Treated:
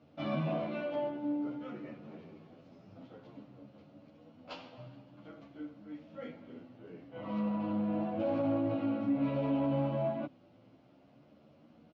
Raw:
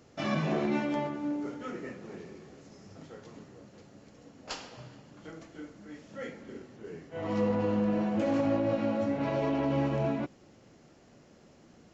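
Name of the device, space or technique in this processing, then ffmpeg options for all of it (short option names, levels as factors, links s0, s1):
barber-pole flanger into a guitar amplifier: -filter_complex "[0:a]asplit=2[s0][s1];[s1]adelay=10.7,afreqshift=0.52[s2];[s0][s2]amix=inputs=2:normalize=1,asoftclip=type=tanh:threshold=0.0596,highpass=77,equalizer=f=130:t=q:w=4:g=3,equalizer=f=280:t=q:w=4:g=6,equalizer=f=400:t=q:w=4:g=-7,equalizer=f=610:t=q:w=4:g=5,equalizer=f=1800:t=q:w=4:g=-9,lowpass=f=3800:w=0.5412,lowpass=f=3800:w=1.3066,volume=0.841"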